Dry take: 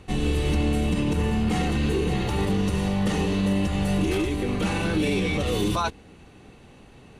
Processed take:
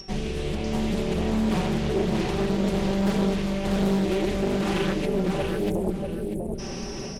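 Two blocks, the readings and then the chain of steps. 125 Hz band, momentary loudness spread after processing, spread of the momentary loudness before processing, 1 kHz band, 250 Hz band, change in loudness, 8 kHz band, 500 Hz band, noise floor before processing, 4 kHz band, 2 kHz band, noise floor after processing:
-3.0 dB, 7 LU, 2 LU, -1.5 dB, 0.0 dB, -1.5 dB, -2.0 dB, +2.0 dB, -50 dBFS, -2.5 dB, -3.5 dB, -33 dBFS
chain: bell 360 Hz +3.5 dB 0.77 oct; AGC gain up to 10.5 dB; whine 5500 Hz -32 dBFS; spectral delete 5.06–6.59, 700–8900 Hz; reverse; compressor 12:1, threshold -26 dBFS, peak gain reduction 17.5 dB; reverse; bell 12000 Hz -5 dB 0.44 oct; comb 5.2 ms, depth 83%; feedback echo 0.642 s, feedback 26%, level -4 dB; Doppler distortion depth 0.7 ms; gain +1 dB

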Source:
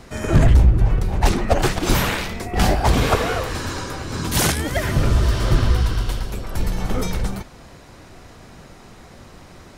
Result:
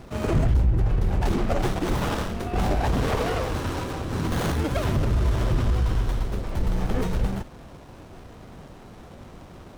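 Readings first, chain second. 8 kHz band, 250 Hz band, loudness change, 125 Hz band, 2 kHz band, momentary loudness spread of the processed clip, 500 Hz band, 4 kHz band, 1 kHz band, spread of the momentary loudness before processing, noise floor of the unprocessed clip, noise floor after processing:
-13.0 dB, -3.5 dB, -5.5 dB, -5.0 dB, -8.0 dB, 22 LU, -4.0 dB, -10.0 dB, -5.5 dB, 11 LU, -44 dBFS, -45 dBFS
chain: limiter -14 dBFS, peak gain reduction 9 dB; running maximum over 17 samples

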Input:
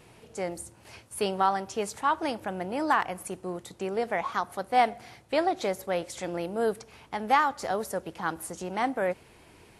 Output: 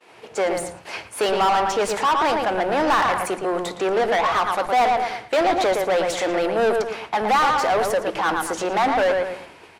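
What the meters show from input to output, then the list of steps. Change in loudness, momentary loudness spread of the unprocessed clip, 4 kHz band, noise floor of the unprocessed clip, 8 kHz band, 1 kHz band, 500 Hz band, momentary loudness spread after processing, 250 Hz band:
+8.5 dB, 12 LU, +11.0 dB, -56 dBFS, +7.5 dB, +8.5 dB, +10.0 dB, 7 LU, +6.0 dB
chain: high shelf 8200 Hz -3.5 dB; on a send: darkening echo 0.114 s, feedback 29%, low-pass 2900 Hz, level -8 dB; on the sum: overdrive pedal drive 27 dB, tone 2800 Hz, clips at -11 dBFS; expander -31 dBFS; bands offset in time highs, lows 80 ms, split 190 Hz

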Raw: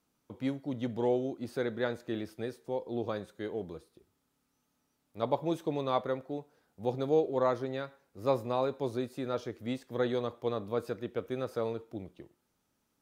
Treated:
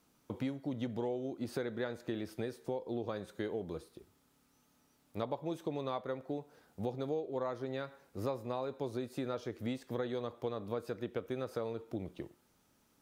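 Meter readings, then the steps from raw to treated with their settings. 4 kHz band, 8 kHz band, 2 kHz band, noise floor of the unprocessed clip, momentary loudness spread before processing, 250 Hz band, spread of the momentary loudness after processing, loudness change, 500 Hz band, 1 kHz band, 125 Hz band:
-4.5 dB, n/a, -4.5 dB, -78 dBFS, 10 LU, -3.5 dB, 6 LU, -5.5 dB, -6.0 dB, -7.0 dB, -3.0 dB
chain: compressor 6:1, threshold -41 dBFS, peak gain reduction 18 dB; gain +6.5 dB

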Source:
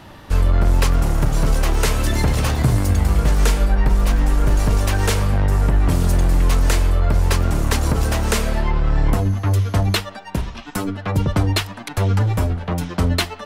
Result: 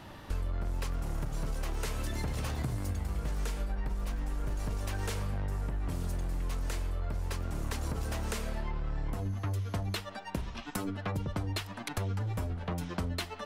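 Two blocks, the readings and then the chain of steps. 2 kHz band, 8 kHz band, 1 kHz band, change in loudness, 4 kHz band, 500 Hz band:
-16.0 dB, -16.5 dB, -15.5 dB, -16.5 dB, -16.0 dB, -16.0 dB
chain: compressor, threshold -24 dBFS, peak gain reduction 12.5 dB; gain -7 dB

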